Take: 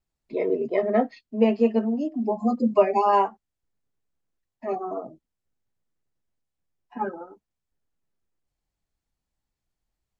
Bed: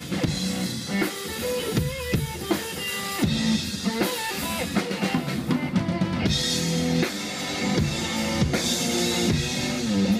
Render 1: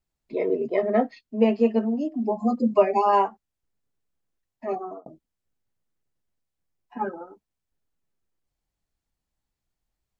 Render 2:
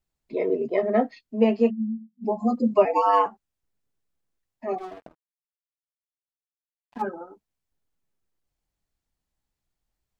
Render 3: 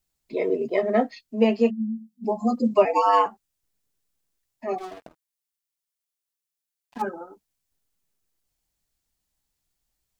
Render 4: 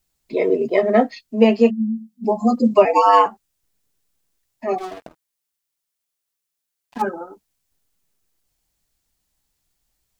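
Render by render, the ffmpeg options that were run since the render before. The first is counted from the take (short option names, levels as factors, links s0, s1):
-filter_complex "[0:a]asplit=2[s0][s1];[s0]atrim=end=5.06,asetpts=PTS-STARTPTS,afade=t=out:st=4.66:d=0.4:c=qsin[s2];[s1]atrim=start=5.06,asetpts=PTS-STARTPTS,afade=t=in:d=0.004:c=hsin[s3];[s2][s3]concat=n=2:v=0:a=1"
-filter_complex "[0:a]asplit=3[s0][s1][s2];[s0]afade=t=out:st=1.69:d=0.02[s3];[s1]asuperpass=centerf=200:order=12:qfactor=4.4,afade=t=in:st=1.69:d=0.02,afade=t=out:st=2.23:d=0.02[s4];[s2]afade=t=in:st=2.23:d=0.02[s5];[s3][s4][s5]amix=inputs=3:normalize=0,asettb=1/sr,asplit=3[s6][s7][s8];[s6]atrim=end=2.854[s9];[s7]atrim=start=2.85:end=3.26,asetpts=PTS-STARTPTS,afade=t=in:d=0.004:c=qsin,afade=t=out:st=0.406:d=0.004:c=qsin,afreqshift=91[s10];[s8]atrim=start=3.256[s11];[s9][s10]acrossfade=d=0.004:c1=hsin:c2=qsin[s12];[s12][s11]acrossfade=d=0.004:c1=qsin:c2=hsin,asettb=1/sr,asplit=3[s13][s14][s15];[s13]atrim=end=4.784[s16];[s14]atrim=start=4.78:end=7.02,asetpts=PTS-STARTPTS,afade=t=in:d=0.004:c=qsin,afade=t=out:st=2.236:d=0.004:c=qsin,aeval=exprs='sgn(val(0))*max(abs(val(0))-0.00562,0)':c=same[s17];[s15]atrim=start=7.016[s18];[s16][s17]acrossfade=d=0.004:c1=hsin:c2=qsin[s19];[s19][s18]acrossfade=d=0.004:c1=qsin:c2=hsin"
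-af "highshelf=f=3200:g=10.5"
-af "volume=2,alimiter=limit=0.891:level=0:latency=1"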